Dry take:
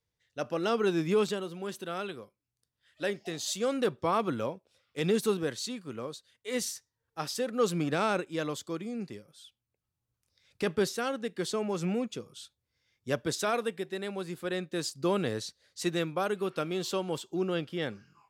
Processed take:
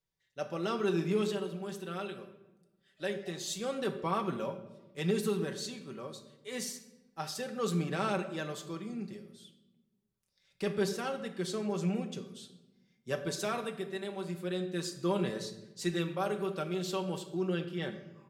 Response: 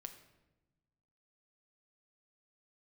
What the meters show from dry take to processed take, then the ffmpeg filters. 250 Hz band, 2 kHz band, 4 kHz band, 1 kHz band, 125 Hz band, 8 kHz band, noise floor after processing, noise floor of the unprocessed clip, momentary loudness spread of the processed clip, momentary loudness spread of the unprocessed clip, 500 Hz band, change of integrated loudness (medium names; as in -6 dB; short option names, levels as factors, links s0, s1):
-2.0 dB, -4.0 dB, -3.5 dB, -3.5 dB, 0.0 dB, -4.0 dB, -76 dBFS, under -85 dBFS, 13 LU, 12 LU, -4.0 dB, -3.0 dB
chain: -filter_complex "[0:a]aecho=1:1:5.2:0.6[s0];[1:a]atrim=start_sample=2205[s1];[s0][s1]afir=irnorm=-1:irlink=0"